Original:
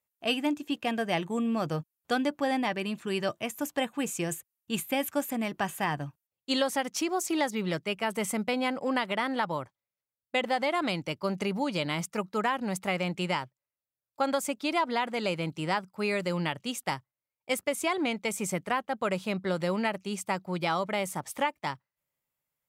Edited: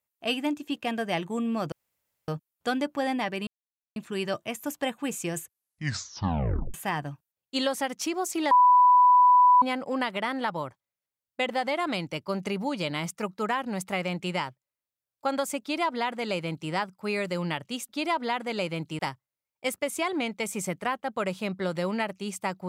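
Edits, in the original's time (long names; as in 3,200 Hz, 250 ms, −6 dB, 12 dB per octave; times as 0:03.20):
0:01.72: splice in room tone 0.56 s
0:02.91: splice in silence 0.49 s
0:04.35: tape stop 1.34 s
0:07.46–0:08.57: beep over 992 Hz −14 dBFS
0:14.56–0:15.66: duplicate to 0:16.84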